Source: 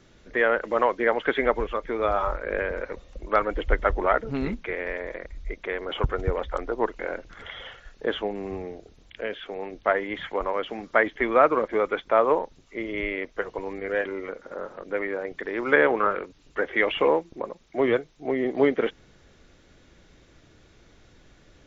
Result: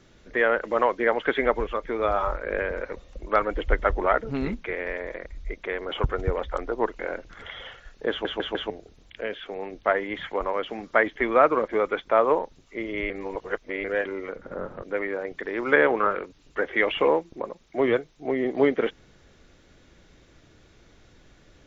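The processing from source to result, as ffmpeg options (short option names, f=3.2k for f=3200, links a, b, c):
-filter_complex "[0:a]asettb=1/sr,asplit=3[a][b][c];[a]atrim=end=14.364[d];[b]atrim=start=14.36:end=14.82,asetpts=PTS-STARTPTS,afade=t=in:d=0.004:c=qsin,afade=t=out:st=0.456:d=0.004:c=qsin,bass=f=250:g=13,treble=f=4k:g=-8[e];[c]atrim=start=14.816[f];[d][e]acrossfade=d=0.004:c1=hsin:c2=qsin[g];[g][f]acrossfade=d=0.004:c1=qsin:c2=hsin,asplit=7[h][i][j][k][l][m][n];[h]atrim=end=8.252[o];[i]atrim=start=8.098:end=8.252[p];[j]atrim=start=8.098:end=8.252[q];[k]atrim=start=8.098:end=8.252[r];[l]atrim=start=8.698:end=13.102[s];[m]atrim=start=13.098:end=13.842,asetpts=PTS-STARTPTS,areverse[t];[n]atrim=start=13.838[u];[o][p]acrossfade=d=0.004:c1=hsin:c2=hsin[v];[v][q]acrossfade=d=0.004:c1=hsin:c2=hsin[w];[w][r]acrossfade=d=0.004:c1=hsin:c2=hsin[x];[x][s]acrossfade=d=0.004:c1=hsin:c2=hsin[y];[y][t]acrossfade=d=0.004:c1=hsin:c2=hsin[z];[z][u]acrossfade=d=0.004:c1=hsin:c2=hsin"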